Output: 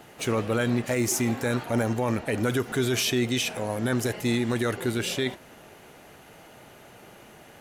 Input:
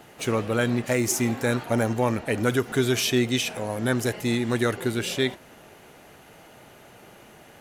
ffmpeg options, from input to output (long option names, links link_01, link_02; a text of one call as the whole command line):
ffmpeg -i in.wav -af "alimiter=limit=-15.5dB:level=0:latency=1:release=12" out.wav